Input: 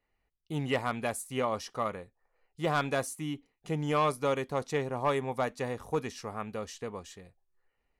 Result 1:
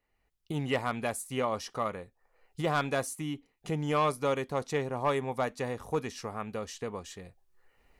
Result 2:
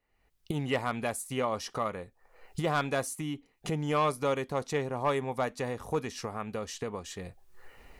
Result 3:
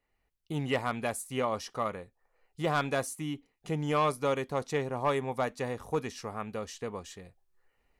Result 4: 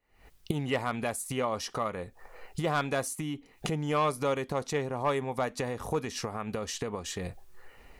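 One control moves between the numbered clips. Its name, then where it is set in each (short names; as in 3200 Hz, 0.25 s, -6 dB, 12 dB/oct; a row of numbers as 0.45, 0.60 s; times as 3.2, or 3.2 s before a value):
recorder AGC, rising by: 13, 34, 5, 91 dB/s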